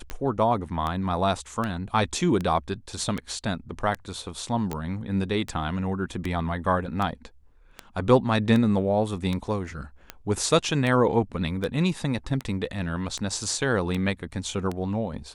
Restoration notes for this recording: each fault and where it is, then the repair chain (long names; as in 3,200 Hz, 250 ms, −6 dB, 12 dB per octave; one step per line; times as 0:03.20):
scratch tick 78 rpm −16 dBFS
0:04.73: click −17 dBFS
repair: click removal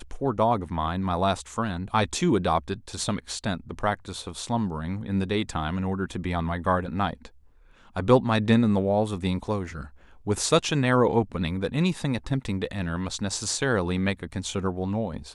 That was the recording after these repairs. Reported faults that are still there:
none of them is left